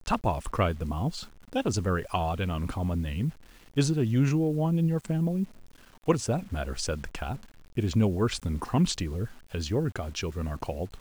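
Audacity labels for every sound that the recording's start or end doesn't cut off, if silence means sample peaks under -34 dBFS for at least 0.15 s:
1.530000	3.300000	sound
3.770000	5.440000	sound
6.080000	7.360000	sound
7.770000	9.260000	sound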